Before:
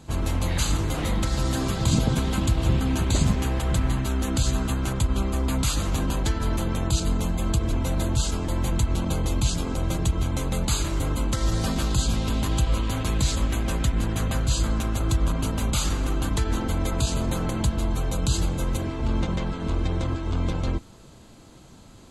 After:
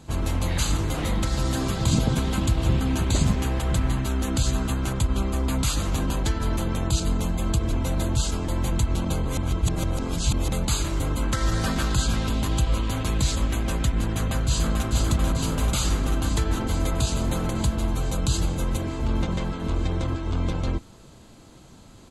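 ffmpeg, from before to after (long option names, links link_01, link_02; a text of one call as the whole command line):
ffmpeg -i in.wav -filter_complex "[0:a]asettb=1/sr,asplit=3[link_01][link_02][link_03];[link_01]atrim=end=11.224[link_04];[link_02]atrim=start=11.22:end=12.27,asetpts=PTS-STARTPTS,afade=type=in:duration=0.004:curve=qsin,afade=type=out:start_time=1.046:duration=0.004:curve=qsin,equalizer=frequency=1600:width=1.6:gain=7[link_05];[link_03]atrim=start=12.266[link_06];[link_04][link_05]acrossfade=duration=0.004:curve1=hsin:curve2=qsin[link_07];[link_07][link_06]acrossfade=duration=0.004:curve1=qsin:curve2=hsin,asplit=2[link_08][link_09];[link_09]afade=type=in:start_time=14.08:duration=0.01,afade=type=out:start_time=14.88:duration=0.01,aecho=0:1:440|880|1320|1760|2200|2640|3080|3520|3960|4400|4840|5280:0.630957|0.504766|0.403813|0.32305|0.25844|0.206752|0.165402|0.132321|0.105857|0.0846857|0.0677485|0.0541988[link_10];[link_08][link_10]amix=inputs=2:normalize=0,asplit=3[link_11][link_12][link_13];[link_11]atrim=end=9.252[link_14];[link_12]atrim=start=9.248:end=10.492,asetpts=PTS-STARTPTS,areverse[link_15];[link_13]atrim=start=10.488[link_16];[link_14][link_15]acrossfade=duration=0.004:curve1=hsin:curve2=hsin[link_17];[link_17][link_16]acrossfade=duration=0.004:curve1=hsin:curve2=hsin" out.wav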